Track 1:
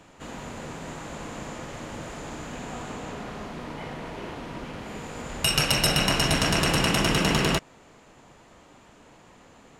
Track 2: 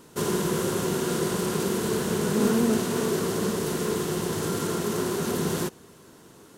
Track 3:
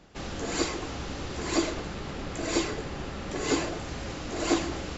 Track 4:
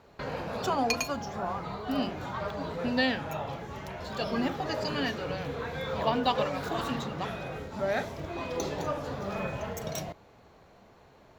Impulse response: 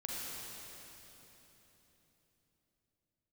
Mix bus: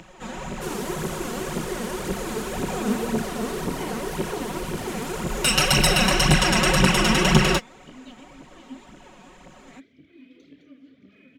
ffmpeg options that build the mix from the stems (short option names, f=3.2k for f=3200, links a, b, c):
-filter_complex "[0:a]equalizer=f=15k:t=o:w=0.77:g=-5,bandreject=f=4.5k:w=17,aecho=1:1:5.4:0.85,volume=0.5dB[a];[1:a]adelay=450,volume=-6.5dB[b];[3:a]asplit=3[c][d][e];[c]bandpass=f=270:t=q:w=8,volume=0dB[f];[d]bandpass=f=2.29k:t=q:w=8,volume=-6dB[g];[e]bandpass=f=3.01k:t=q:w=8,volume=-9dB[h];[f][g][h]amix=inputs=3:normalize=0,adelay=1800,volume=-6.5dB[i];[a][b][i]amix=inputs=3:normalize=0,acompressor=mode=upward:threshold=-50dB:ratio=2.5,aphaser=in_gain=1:out_gain=1:delay=4.7:decay=0.57:speed=1.9:type=triangular"